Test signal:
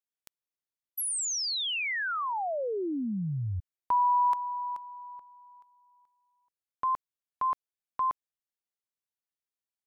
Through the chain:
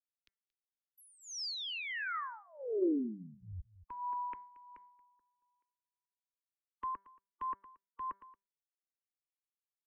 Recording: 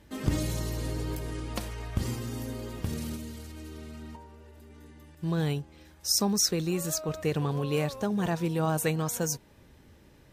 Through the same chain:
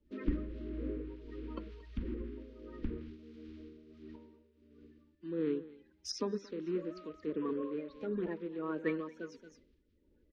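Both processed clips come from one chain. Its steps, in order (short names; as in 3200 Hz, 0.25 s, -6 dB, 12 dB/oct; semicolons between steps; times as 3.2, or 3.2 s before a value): bin magnitudes rounded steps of 30 dB; air absorption 300 m; in parallel at 0 dB: compressor 16:1, threshold -42 dBFS; on the sum: de-hum 197 Hz, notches 11; on a send: echo 0.228 s -13.5 dB; on the sum: dynamic EQ 110 Hz, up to -6 dB, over -42 dBFS, Q 0.74; tremolo triangle 1.5 Hz, depth 55%; fixed phaser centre 310 Hz, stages 4; treble ducked by the level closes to 2100 Hz, closed at -34 dBFS; three-band expander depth 70%; gain -2 dB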